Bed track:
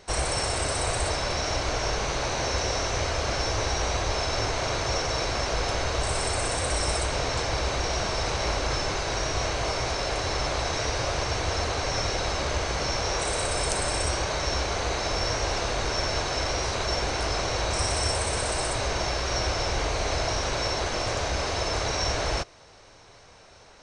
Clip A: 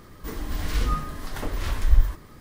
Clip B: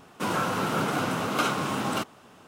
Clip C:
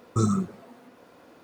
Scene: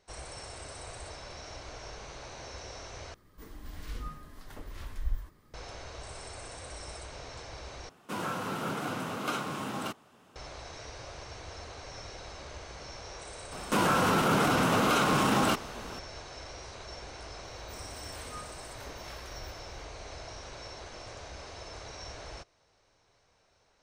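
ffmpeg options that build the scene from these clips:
ffmpeg -i bed.wav -i cue0.wav -i cue1.wav -filter_complex "[1:a]asplit=2[link_01][link_02];[2:a]asplit=2[link_03][link_04];[0:a]volume=-17dB[link_05];[link_04]alimiter=level_in=24.5dB:limit=-1dB:release=50:level=0:latency=1[link_06];[link_02]highpass=frequency=360:poles=1[link_07];[link_05]asplit=3[link_08][link_09][link_10];[link_08]atrim=end=3.144[link_11];[link_01]atrim=end=2.4,asetpts=PTS-STARTPTS,volume=-15dB[link_12];[link_09]atrim=start=5.536:end=7.894[link_13];[link_03]atrim=end=2.47,asetpts=PTS-STARTPTS,volume=-7.5dB[link_14];[link_10]atrim=start=10.356[link_15];[link_06]atrim=end=2.47,asetpts=PTS-STARTPTS,volume=-16dB,afade=type=in:duration=0.004:curve=hsin,afade=type=out:start_time=2.466:duration=0.004:curve=hsin,adelay=13520[link_16];[link_07]atrim=end=2.4,asetpts=PTS-STARTPTS,volume=-13.5dB,afade=type=in:duration=0.004:curve=hsin,afade=type=out:start_time=2.396:duration=0.004:curve=hsin,adelay=17440[link_17];[link_11][link_12]acrossfade=duration=0.004:curve1=hsin:curve2=hsin[link_18];[link_18][link_13]acrossfade=duration=0.004:curve1=hsin:curve2=hsin[link_19];[link_19][link_14]acrossfade=duration=0.004:curve1=hsin:curve2=hsin[link_20];[link_20][link_15]acrossfade=duration=0.004:curve1=hsin:curve2=hsin[link_21];[link_21][link_16][link_17]amix=inputs=3:normalize=0" out.wav

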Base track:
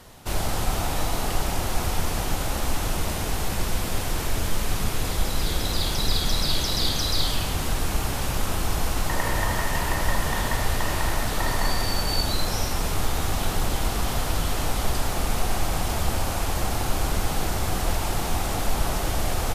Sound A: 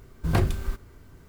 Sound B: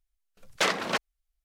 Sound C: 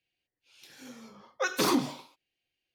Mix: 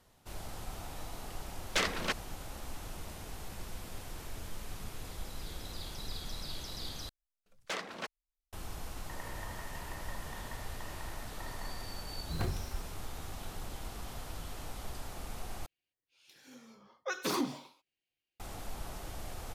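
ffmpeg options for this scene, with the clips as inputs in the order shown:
ffmpeg -i bed.wav -i cue0.wav -i cue1.wav -i cue2.wav -filter_complex "[2:a]asplit=2[link_01][link_02];[0:a]volume=-18dB[link_03];[link_01]equalizer=frequency=810:width=0.89:gain=-5[link_04];[link_03]asplit=3[link_05][link_06][link_07];[link_05]atrim=end=7.094[link_08];[link_02]atrim=end=1.44,asetpts=PTS-STARTPTS,volume=-13dB[link_09];[link_06]atrim=start=8.526:end=15.664[link_10];[3:a]atrim=end=2.74,asetpts=PTS-STARTPTS,volume=-7dB[link_11];[link_07]atrim=start=18.396[link_12];[link_04]atrim=end=1.44,asetpts=PTS-STARTPTS,volume=-4dB,afade=type=in:duration=0.004:curve=hsin,afade=type=out:start_time=1.436:duration=0.004:curve=hsin,adelay=1150[link_13];[1:a]atrim=end=1.28,asetpts=PTS-STARTPTS,volume=-13dB,afade=type=in:duration=0.004:curve=hsin,afade=type=out:start_time=1.276:duration=0.004:curve=hsin,adelay=12060[link_14];[link_08][link_09]acrossfade=duration=0.004:curve1=hsin:curve2=hsin[link_15];[link_15][link_10]acrossfade=duration=0.004:curve1=hsin:curve2=hsin[link_16];[link_16][link_11]acrossfade=duration=0.004:curve1=hsin:curve2=hsin[link_17];[link_17][link_12]acrossfade=duration=0.004:curve1=hsin:curve2=hsin[link_18];[link_18][link_13][link_14]amix=inputs=3:normalize=0" out.wav

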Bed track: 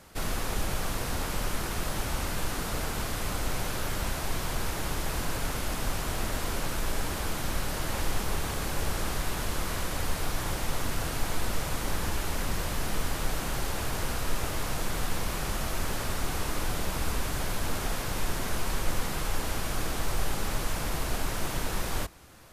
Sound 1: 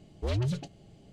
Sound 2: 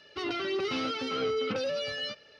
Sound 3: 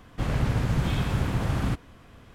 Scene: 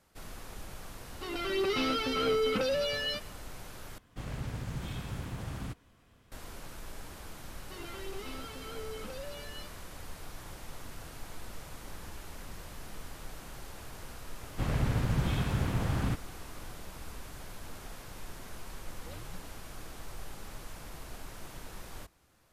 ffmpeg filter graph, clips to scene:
ffmpeg -i bed.wav -i cue0.wav -i cue1.wav -i cue2.wav -filter_complex "[2:a]asplit=2[link_01][link_02];[3:a]asplit=2[link_03][link_04];[0:a]volume=-14.5dB[link_05];[link_01]dynaudnorm=framelen=270:gausssize=3:maxgain=8.5dB[link_06];[link_03]highshelf=frequency=4600:gain=8.5[link_07];[1:a]aecho=1:1:3.9:0.65[link_08];[link_05]asplit=2[link_09][link_10];[link_09]atrim=end=3.984[link_11];[link_07]atrim=end=2.34,asetpts=PTS-STARTPTS,volume=-13dB[link_12];[link_10]atrim=start=6.316[link_13];[link_06]atrim=end=2.39,asetpts=PTS-STARTPTS,volume=-7dB,afade=type=in:duration=0.004:curve=hsin,afade=type=out:start_time=2.386:duration=0.004:curve=hsin,adelay=1050[link_14];[link_02]atrim=end=2.39,asetpts=PTS-STARTPTS,volume=-13dB,afade=type=in:duration=0.004:curve=hsin,afade=type=out:start_time=2.386:duration=0.004:curve=hsin,adelay=332514S[link_15];[link_04]atrim=end=2.34,asetpts=PTS-STARTPTS,volume=-4.5dB,afade=type=in:duration=0.004:curve=hsin,afade=type=out:start_time=2.336:duration=0.004:curve=hsin,adelay=14400[link_16];[link_08]atrim=end=1.12,asetpts=PTS-STARTPTS,volume=-17.5dB,afade=type=in:duration=0.004:curve=hsin,afade=type=out:start_time=1.116:duration=0.004:curve=hsin,adelay=18820[link_17];[link_11][link_12]acrossfade=duration=0.004:curve1=hsin:curve2=hsin[link_18];[link_18][link_13]acrossfade=duration=0.004:curve1=hsin:curve2=hsin[link_19];[link_19][link_14][link_15][link_16][link_17]amix=inputs=5:normalize=0" out.wav

